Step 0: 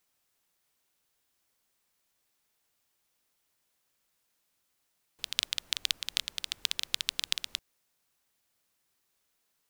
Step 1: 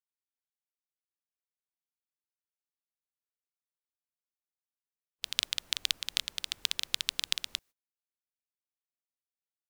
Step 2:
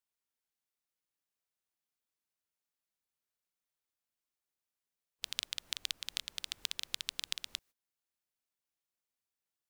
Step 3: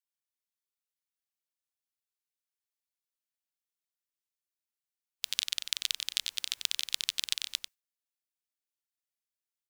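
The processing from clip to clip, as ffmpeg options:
ffmpeg -i in.wav -af "agate=range=-30dB:threshold=-58dB:ratio=16:detection=peak" out.wav
ffmpeg -i in.wav -af "acompressor=threshold=-43dB:ratio=2,volume=3dB" out.wav
ffmpeg -i in.wav -filter_complex "[0:a]agate=range=-11dB:threshold=-56dB:ratio=16:detection=peak,tiltshelf=frequency=1100:gain=-7.5,asplit=2[link_01][link_02];[link_02]adelay=93.29,volume=-7dB,highshelf=frequency=4000:gain=-2.1[link_03];[link_01][link_03]amix=inputs=2:normalize=0" out.wav

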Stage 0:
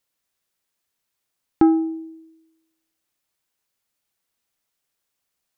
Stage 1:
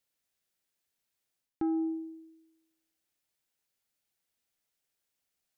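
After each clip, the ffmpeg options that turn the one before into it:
ffmpeg -i in.wav -af "equalizer=frequency=1100:width_type=o:width=0.44:gain=-5.5,areverse,acompressor=threshold=-24dB:ratio=6,areverse,volume=-5dB" out.wav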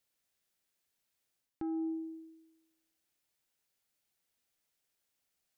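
ffmpeg -i in.wav -af "alimiter=level_in=8dB:limit=-24dB:level=0:latency=1:release=335,volume=-8dB,volume=1dB" out.wav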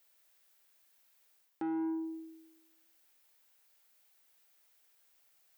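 ffmpeg -i in.wav -filter_complex "[0:a]asplit=2[link_01][link_02];[link_02]highpass=frequency=720:poles=1,volume=14dB,asoftclip=type=tanh:threshold=-30.5dB[link_03];[link_01][link_03]amix=inputs=2:normalize=0,lowpass=frequency=1300:poles=1,volume=-6dB,aemphasis=mode=production:type=bsi,volume=5dB" out.wav

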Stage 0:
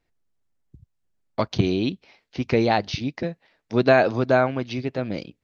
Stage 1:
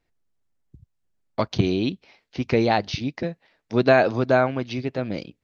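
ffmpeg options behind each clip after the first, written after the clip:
ffmpeg -i in.wav -af anull out.wav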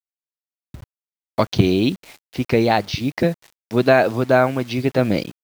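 ffmpeg -i in.wav -af "dynaudnorm=framelen=170:gausssize=3:maxgain=12dB,acrusher=bits=6:mix=0:aa=0.000001,volume=-1dB" out.wav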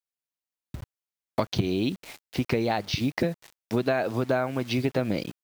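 ffmpeg -i in.wav -af "acompressor=threshold=-22dB:ratio=6" out.wav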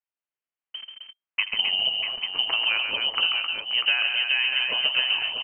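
ffmpeg -i in.wav -filter_complex "[0:a]asplit=2[link_01][link_02];[link_02]aecho=0:1:80|137|262|284|643|839:0.158|0.501|0.501|0.112|0.447|0.299[link_03];[link_01][link_03]amix=inputs=2:normalize=0,lowpass=frequency=2700:width_type=q:width=0.5098,lowpass=frequency=2700:width_type=q:width=0.6013,lowpass=frequency=2700:width_type=q:width=0.9,lowpass=frequency=2700:width_type=q:width=2.563,afreqshift=-3200" out.wav

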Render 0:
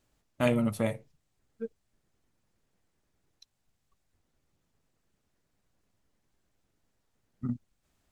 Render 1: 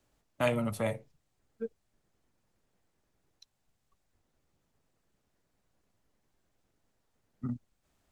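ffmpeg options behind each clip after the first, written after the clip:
ffmpeg -i in.wav -filter_complex "[0:a]equalizer=frequency=670:width=0.65:gain=3,acrossover=split=120|570|4400[link_01][link_02][link_03][link_04];[link_02]alimiter=level_in=5dB:limit=-24dB:level=0:latency=1,volume=-5dB[link_05];[link_01][link_05][link_03][link_04]amix=inputs=4:normalize=0,volume=-1dB" out.wav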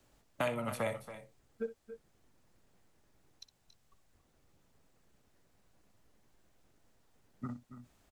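ffmpeg -i in.wav -filter_complex "[0:a]acrossover=split=550|2200[link_01][link_02][link_03];[link_01]acompressor=threshold=-47dB:ratio=4[link_04];[link_02]acompressor=threshold=-41dB:ratio=4[link_05];[link_03]acompressor=threshold=-52dB:ratio=4[link_06];[link_04][link_05][link_06]amix=inputs=3:normalize=0,aecho=1:1:62|278|302:0.188|0.224|0.112,volume=5.5dB" out.wav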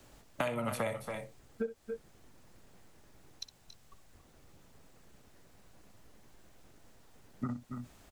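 ffmpeg -i in.wav -af "acompressor=threshold=-44dB:ratio=3,volume=10dB" out.wav

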